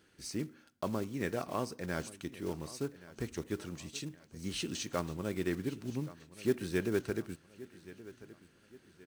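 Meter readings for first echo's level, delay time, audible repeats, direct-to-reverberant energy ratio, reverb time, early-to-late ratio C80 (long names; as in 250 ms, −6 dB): −18.0 dB, 1,125 ms, 3, no reverb audible, no reverb audible, no reverb audible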